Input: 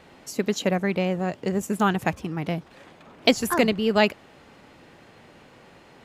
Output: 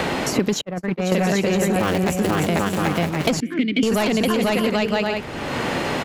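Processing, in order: 1.75–2.31 cycle switcher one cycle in 2, muted; on a send: bouncing-ball echo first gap 0.49 s, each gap 0.6×, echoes 5; on the sum: soft clip -17 dBFS, distortion -12 dB; 3.4–3.83 vowel filter i; in parallel at +1 dB: negative-ratio compressor -27 dBFS, ratio -0.5; 0.61–1.12 on the sum: gate -18 dBFS, range -47 dB; three-band squash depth 100%; gain +1 dB

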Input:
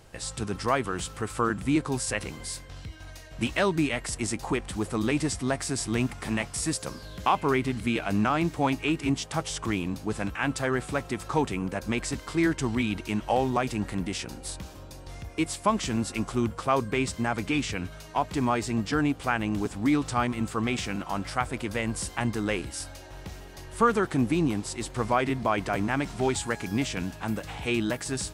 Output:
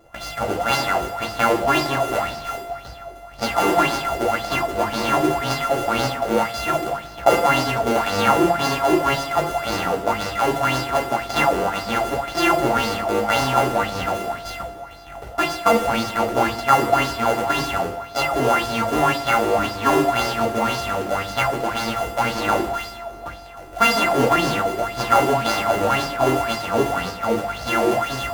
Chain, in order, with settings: sample sorter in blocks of 64 samples; bell 840 Hz +10.5 dB 1.3 oct; in parallel at -7 dB: bit-crush 5-bit; on the sum: two-slope reverb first 0.54 s, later 3 s, from -18 dB, DRR -2 dB; LFO bell 1.9 Hz 360–5000 Hz +13 dB; gain -6.5 dB

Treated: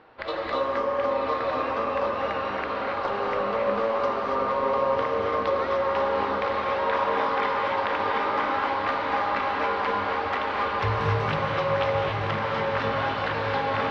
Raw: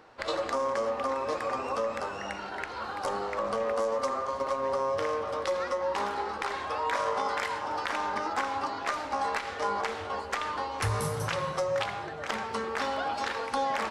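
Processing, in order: LPF 3800 Hz 24 dB/oct; on a send: diffused feedback echo 1.014 s, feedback 71%, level -5 dB; on the sum: non-linear reverb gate 0.31 s rising, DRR 0 dB; gain +1 dB

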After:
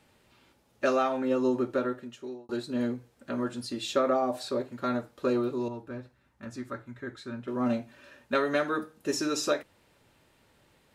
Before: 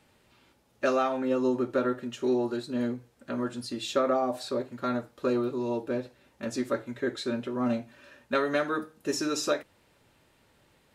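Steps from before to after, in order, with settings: 1.63–2.49 fade out; 5.68–7.48 EQ curve 110 Hz 0 dB, 500 Hz -13 dB, 1300 Hz -3 dB, 2900 Hz -11 dB

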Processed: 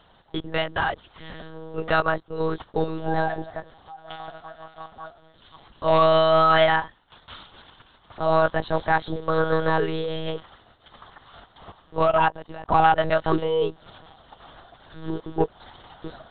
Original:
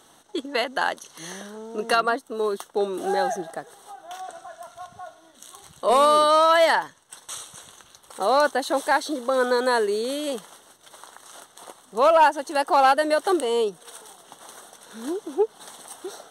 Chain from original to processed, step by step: monotone LPC vocoder at 8 kHz 160 Hz; 12.02–12.69 level quantiser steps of 18 dB

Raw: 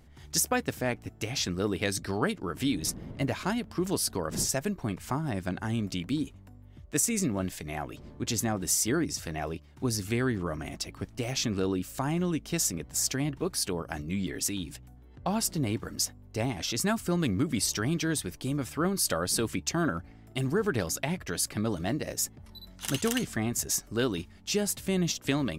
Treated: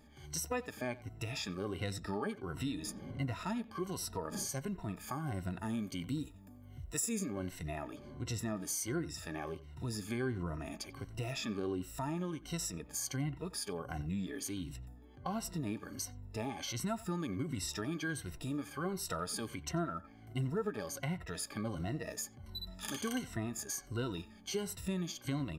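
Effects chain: moving spectral ripple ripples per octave 2, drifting -1.4 Hz, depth 15 dB; dynamic EQ 1200 Hz, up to +4 dB, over -43 dBFS, Q 0.88; harmonic-percussive split percussive -10 dB; 4.95–7.23 high shelf 11000 Hz -> 6800 Hz +10.5 dB; compressor 2:1, threshold -41 dBFS, peak gain reduction 12.5 dB; speakerphone echo 90 ms, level -17 dB

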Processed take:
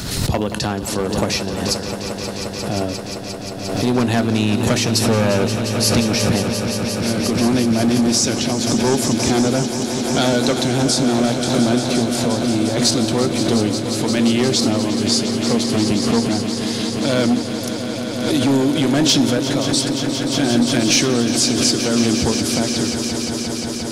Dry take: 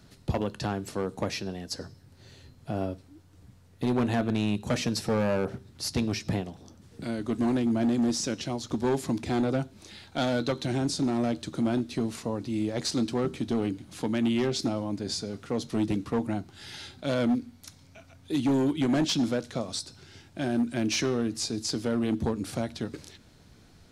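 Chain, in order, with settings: high shelf 3600 Hz +8.5 dB; on a send: swelling echo 0.176 s, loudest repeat 5, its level -11.5 dB; on the sum: backwards sustainer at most 43 dB/s; gain +8 dB

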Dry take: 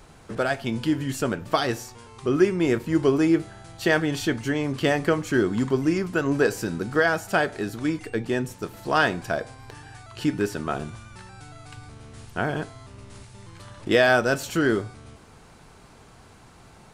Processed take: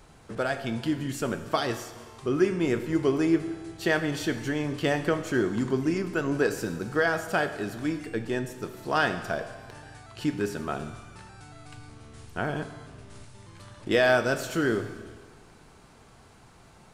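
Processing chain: Schroeder reverb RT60 1.6 s, combs from 27 ms, DRR 10 dB; gain -4 dB

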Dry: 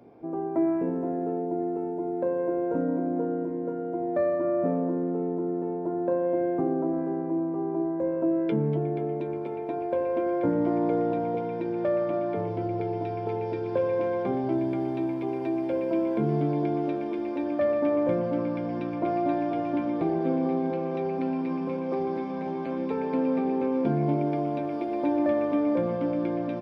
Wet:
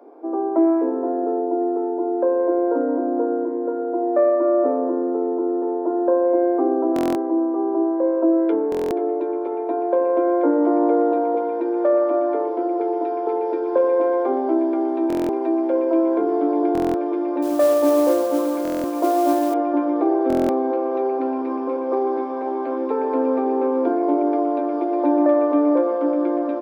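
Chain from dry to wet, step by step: steep high-pass 270 Hz 72 dB/oct; resonant high shelf 1700 Hz -9 dB, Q 1.5; 17.42–19.54 modulation noise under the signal 21 dB; stuck buffer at 6.94/8.7/15.08/16.73/18.63/20.28, samples 1024, times 8; gain +7.5 dB

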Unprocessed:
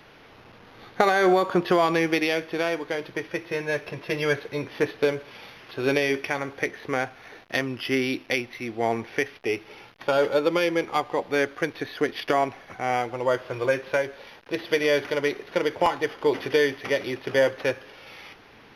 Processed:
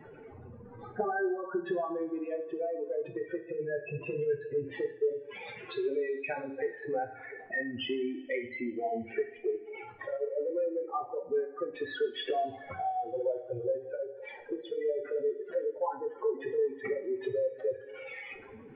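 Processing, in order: spectral contrast raised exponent 3.9; compressor 4:1, threshold -34 dBFS, peak gain reduction 14.5 dB; two-slope reverb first 0.45 s, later 2.8 s, from -22 dB, DRR 3 dB

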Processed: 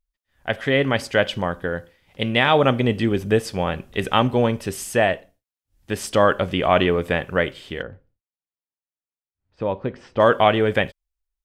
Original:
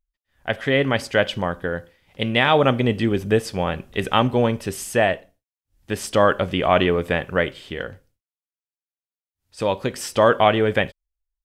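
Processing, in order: 7.82–10.2 tape spacing loss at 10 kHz 41 dB

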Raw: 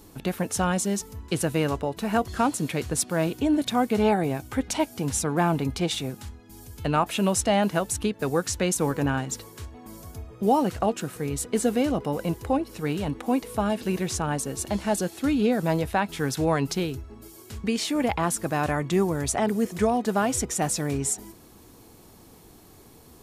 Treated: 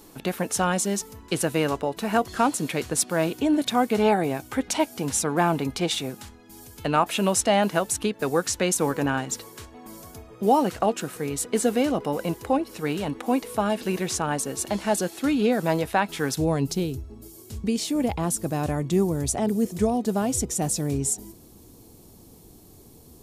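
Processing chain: bell 65 Hz -11.5 dB 2.2 oct, from 16.35 s 1600 Hz; gain +2.5 dB

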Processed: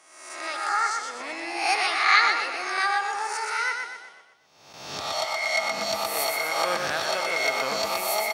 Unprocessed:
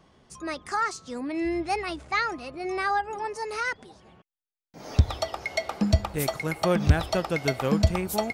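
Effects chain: spectral swells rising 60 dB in 0.92 s; HPF 740 Hz 12 dB/oct; 1.2–3.4 harmonic-percussive split percussive +8 dB; feedback echo 0.123 s, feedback 46%, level -5 dB

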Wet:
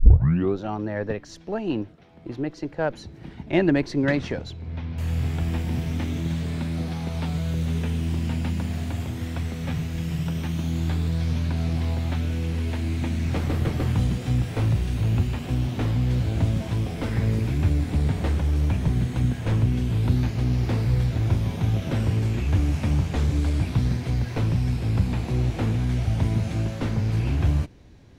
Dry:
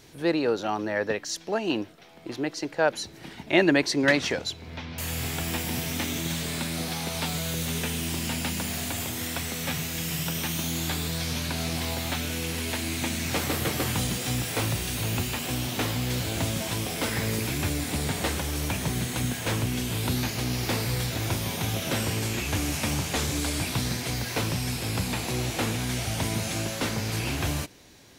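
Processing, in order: tape start at the beginning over 0.59 s; added harmonics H 2 -19 dB, 8 -31 dB, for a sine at -5.5 dBFS; RIAA curve playback; gain -4 dB

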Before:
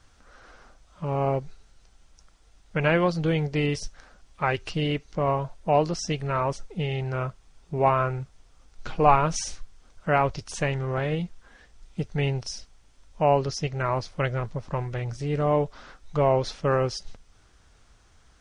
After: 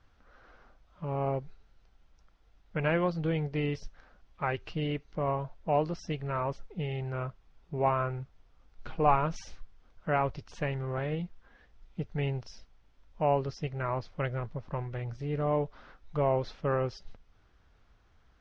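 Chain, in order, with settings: air absorption 200 m; gain -5.5 dB

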